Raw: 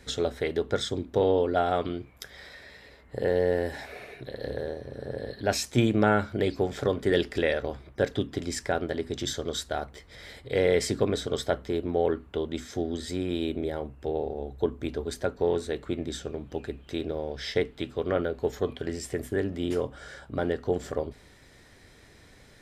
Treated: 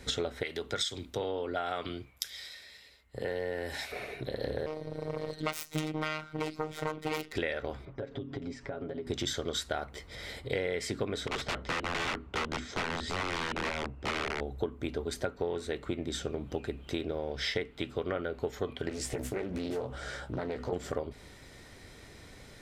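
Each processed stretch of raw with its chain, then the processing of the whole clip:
0.43–3.92 tilt shelf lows -5.5 dB, about 1300 Hz + compressor 2:1, threshold -33 dBFS + three-band expander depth 70%
4.66–7.33 self-modulated delay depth 0.8 ms + robotiser 155 Hz
7.85–9.07 comb 7.3 ms, depth 87% + compressor 8:1, threshold -36 dBFS + tape spacing loss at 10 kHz 27 dB
11.27–14.41 wrapped overs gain 27.5 dB + air absorption 95 m
18.89–20.73 compressor 5:1, threshold -33 dBFS + doubler 16 ms -4.5 dB + Doppler distortion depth 0.54 ms
whole clip: notch 1700 Hz, Q 13; dynamic EQ 1900 Hz, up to +7 dB, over -44 dBFS, Q 0.76; compressor 6:1, threshold -33 dBFS; gain +3 dB

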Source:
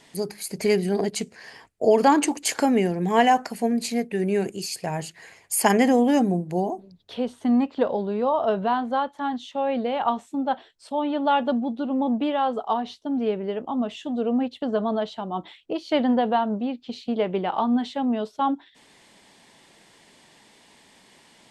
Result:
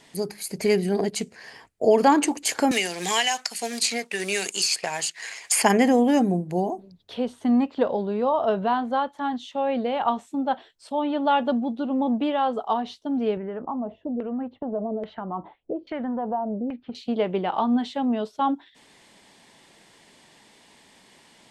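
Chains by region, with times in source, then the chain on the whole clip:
2.71–5.63 G.711 law mismatch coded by A + weighting filter ITU-R 468 + three-band squash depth 100%
13.37–16.95 compressor 3:1, threshold -33 dBFS + LFO low-pass saw down 1.2 Hz 430–2100 Hz + low shelf 260 Hz +6 dB
whole clip: dry

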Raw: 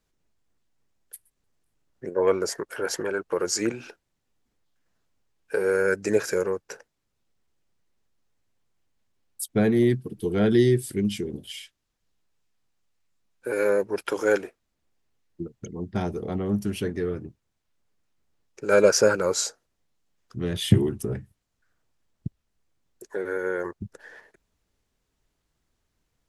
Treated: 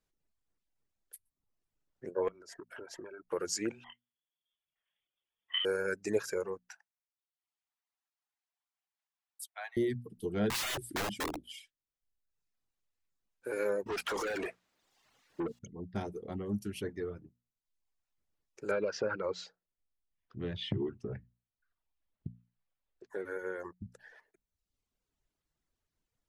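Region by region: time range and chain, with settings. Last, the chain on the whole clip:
2.28–3.29 LPF 2300 Hz 6 dB/oct + compressor 12:1, threshold -33 dBFS + comb 3.1 ms, depth 35%
3.84–5.65 HPF 89 Hz + doubler 23 ms -4 dB + inverted band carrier 3500 Hz
6.69–9.77 steep high-pass 680 Hz 72 dB/oct + high shelf 5600 Hz -5.5 dB
10.5–11.49 bell 310 Hz +12 dB 0.51 oct + wrapped overs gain 20 dB
13.86–15.59 overdrive pedal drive 35 dB, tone 3500 Hz, clips at -10.5 dBFS + compressor 5:1, threshold -24 dBFS
18.71–23.1 LPF 4000 Hz 24 dB/oct + compressor, threshold -18 dBFS
whole clip: reverb removal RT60 0.96 s; notches 60/120/180/240 Hz; gain -8.5 dB

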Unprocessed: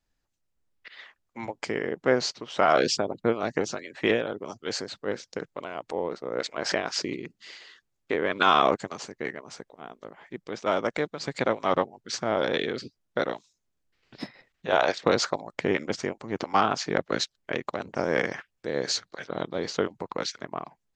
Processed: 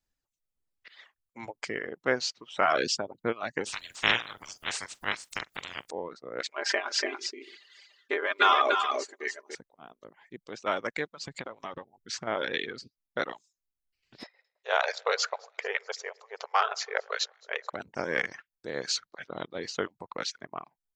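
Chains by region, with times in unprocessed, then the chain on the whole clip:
3.65–5.89 spectral limiter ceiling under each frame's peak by 30 dB + upward compressor, threshold -29 dBFS + doubler 44 ms -12.5 dB
6.52–9.55 brick-wall FIR high-pass 250 Hz + comb 5 ms, depth 61% + echo 0.288 s -4 dB
11.24–12.27 low shelf 95 Hz +9.5 dB + compressor 16:1, threshold -27 dBFS
14.23–17.73 brick-wall FIR band-pass 400–7700 Hz + echo with dull and thin repeats by turns 0.107 s, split 1600 Hz, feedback 69%, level -13 dB
whole clip: high shelf 4700 Hz +6 dB; reverb removal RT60 1.1 s; dynamic EQ 1800 Hz, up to +7 dB, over -40 dBFS, Q 0.73; gain -6.5 dB

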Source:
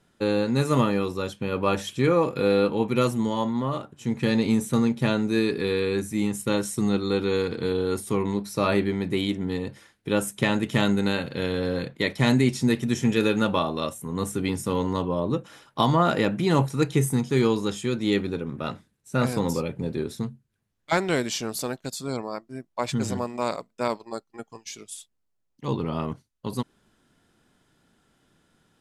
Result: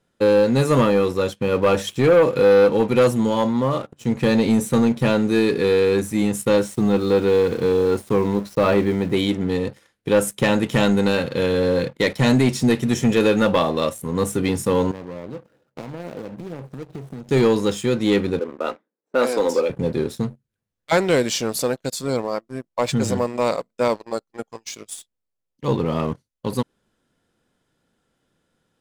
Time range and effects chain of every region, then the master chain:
6.63–9.14 high shelf 5100 Hz -11 dB + sample gate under -43 dBFS
14.91–17.29 median filter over 41 samples + HPF 91 Hz + compressor 8:1, threshold -36 dBFS
18.39–19.7 low-pass opened by the level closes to 750 Hz, open at -18.5 dBFS + HPF 290 Hz 24 dB/oct
whole clip: bell 510 Hz +7.5 dB 0.28 oct; sample leveller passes 2; gain -2 dB

